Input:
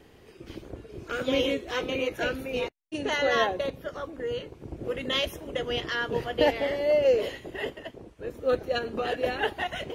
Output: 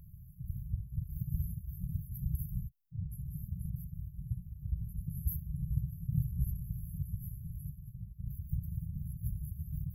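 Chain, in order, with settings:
linear-phase brick-wall band-stop 180–11,000 Hz
0:04.35–0:05.08: parametric band 130 Hz −9 dB 0.62 octaves
level +9 dB

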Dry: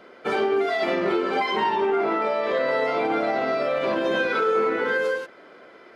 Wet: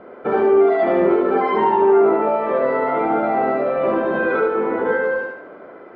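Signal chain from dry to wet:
low-pass filter 1,100 Hz 12 dB per octave
parametric band 61 Hz +12 dB 0.27 octaves
in parallel at −1.5 dB: brickwall limiter −25 dBFS, peak gain reduction 10.5 dB
on the sum: feedback echo with a high-pass in the loop 74 ms, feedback 48%, high-pass 230 Hz, level −3 dB
level +3 dB

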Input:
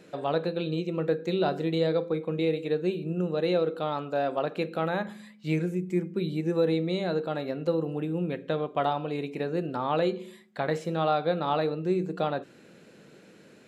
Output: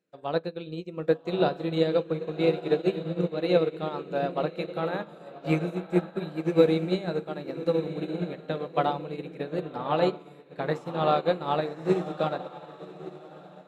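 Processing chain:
tape wow and flutter 26 cents
feedback delay with all-pass diffusion 1,160 ms, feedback 43%, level −5 dB
expander for the loud parts 2.5 to 1, over −44 dBFS
level +6.5 dB

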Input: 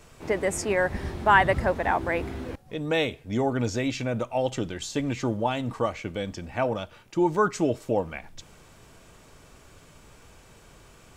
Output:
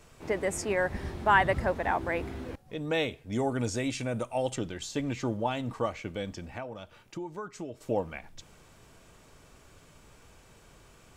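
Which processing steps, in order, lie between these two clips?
0:03.32–0:04.56: parametric band 9,100 Hz +14.5 dB 0.46 octaves
0:06.52–0:07.81: downward compressor 5 to 1, threshold −33 dBFS, peak gain reduction 14.5 dB
level −4 dB

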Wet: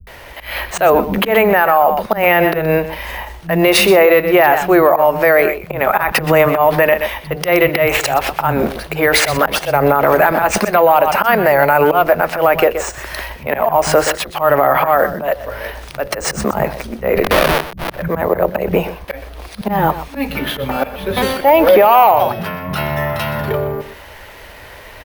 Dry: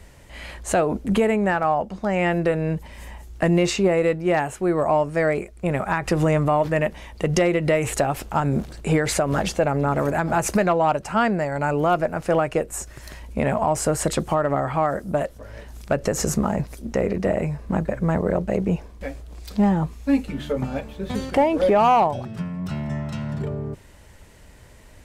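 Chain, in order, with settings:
0:17.17–0:17.87: comparator with hysteresis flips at −23 dBFS
three-way crossover with the lows and the highs turned down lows −13 dB, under 460 Hz, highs −16 dB, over 4,400 Hz
volume swells 192 ms
high-shelf EQ 6,800 Hz +7 dB
multiband delay without the direct sound lows, highs 70 ms, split 180 Hz
bad sample-rate conversion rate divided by 3×, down filtered, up hold
on a send: single-tap delay 124 ms −13.5 dB
on the sum: boost into a limiter +19.5 dB
level −1 dB

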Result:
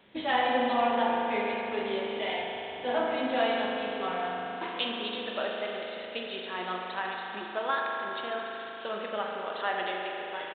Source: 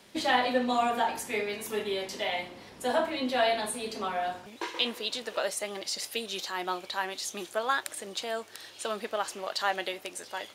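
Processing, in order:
spring reverb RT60 3.8 s, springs 38 ms, chirp 45 ms, DRR −1 dB
downsampling to 8,000 Hz
level −3 dB

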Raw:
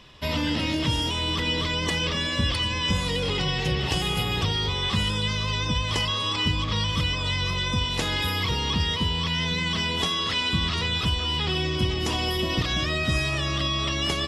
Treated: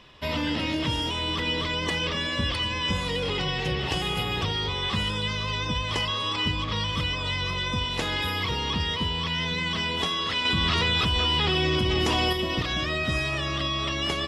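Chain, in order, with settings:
bass and treble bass −4 dB, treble −6 dB
0:10.45–0:12.33: envelope flattener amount 100%

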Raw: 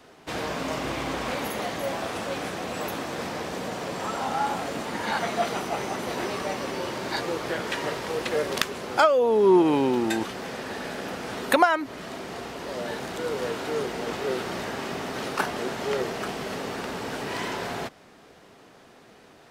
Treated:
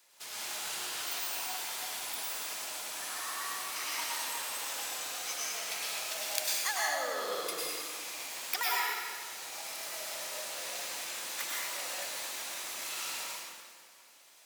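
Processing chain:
dense smooth reverb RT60 2.4 s, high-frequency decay 0.85×, pre-delay 120 ms, DRR −6 dB
wrong playback speed 33 rpm record played at 45 rpm
first-order pre-emphasis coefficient 0.97
level −3.5 dB

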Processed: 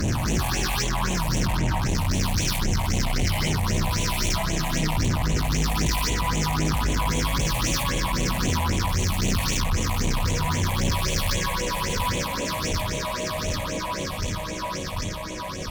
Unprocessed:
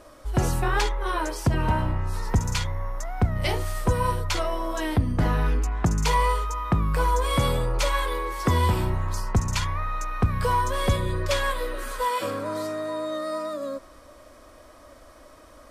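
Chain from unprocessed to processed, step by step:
peak hold with a rise ahead of every peak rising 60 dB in 2.92 s
parametric band 5,500 Hz +11.5 dB 0.47 octaves
delay that swaps between a low-pass and a high-pass 371 ms, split 1,800 Hz, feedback 90%, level −6 dB
tube saturation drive 27 dB, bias 0.65
all-pass phaser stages 6, 3.8 Hz, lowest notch 360–1,400 Hz
multiband upward and downward expander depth 40%
level +6.5 dB

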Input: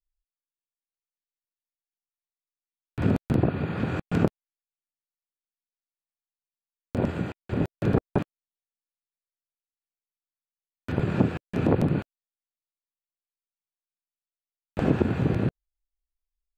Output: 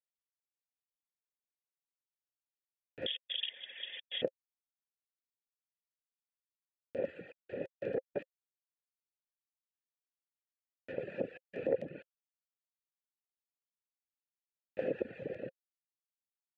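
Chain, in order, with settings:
reverb reduction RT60 1.6 s
0:03.06–0:04.22: voice inversion scrambler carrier 3,500 Hz
formant filter e
level +1.5 dB

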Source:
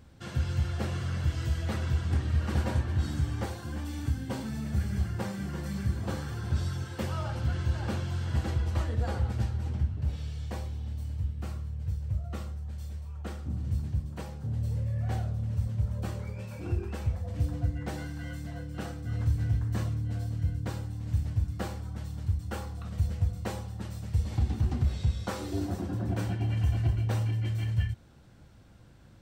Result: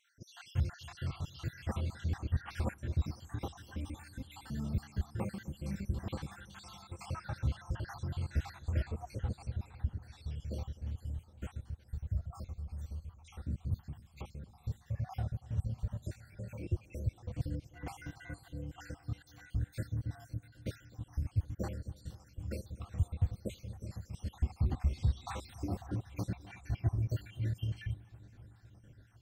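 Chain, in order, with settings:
time-frequency cells dropped at random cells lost 66%
on a send: delay with a low-pass on its return 255 ms, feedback 79%, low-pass 1,600 Hz, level −21 dB
on the sum: level −3 dB

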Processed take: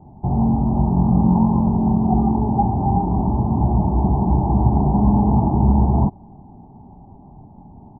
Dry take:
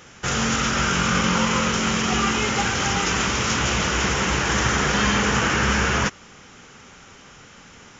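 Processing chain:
Butterworth low-pass 870 Hz 72 dB per octave
comb filter 1 ms, depth 98%
level +4.5 dB

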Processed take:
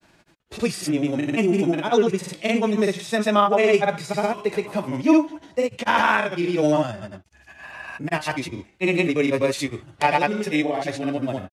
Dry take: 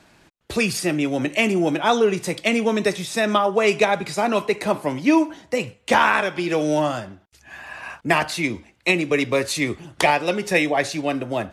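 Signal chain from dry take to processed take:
harmonic and percussive parts rebalanced percussive −10 dB
granular cloud, pitch spread up and down by 0 semitones
level +2.5 dB

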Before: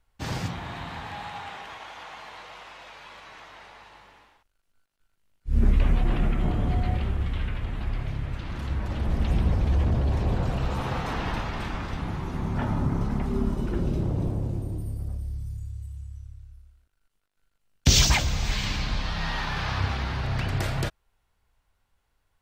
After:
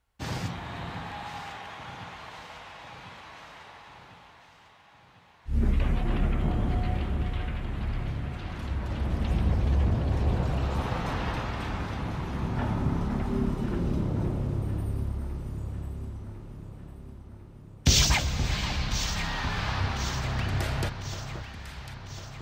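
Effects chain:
high-pass filter 41 Hz
on a send: delay that swaps between a low-pass and a high-pass 525 ms, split 1,500 Hz, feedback 75%, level −8 dB
on the sum: level −2 dB

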